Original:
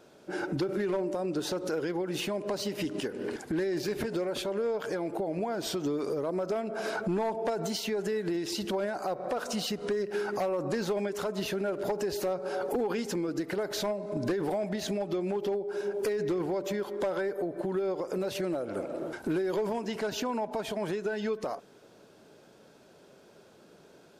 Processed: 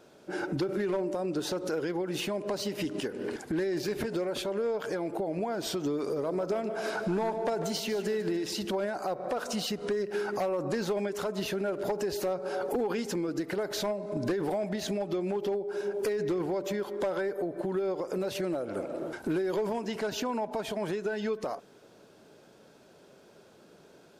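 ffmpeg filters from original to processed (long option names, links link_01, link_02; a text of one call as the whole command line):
ffmpeg -i in.wav -filter_complex "[0:a]asettb=1/sr,asplit=3[link_01][link_02][link_03];[link_01]atrim=end=6.014[link_04];[link_02]atrim=start=6.01:end=8.63,asetpts=PTS-STARTPTS,afade=type=in:duration=0.004:curve=qsin,afade=type=out:start_time=2.616:duration=0.004:curve=qsin,aecho=1:1:149|298|447|596|745:0.251|0.116|0.0532|0.0244|0.0112,atrim=end_sample=115542[link_05];[link_03]atrim=start=8.626[link_06];[link_04][link_05]acrossfade=duration=0.004:curve1=hsin:curve2=qsin[link_07];[link_07][link_06]acrossfade=duration=0.004:curve1=qsin:curve2=hsin" out.wav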